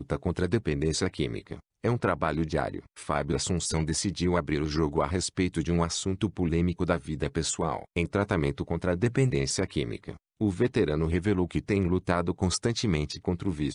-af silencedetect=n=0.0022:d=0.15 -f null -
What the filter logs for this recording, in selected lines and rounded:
silence_start: 1.60
silence_end: 1.83 | silence_duration: 0.23
silence_start: 10.17
silence_end: 10.40 | silence_duration: 0.23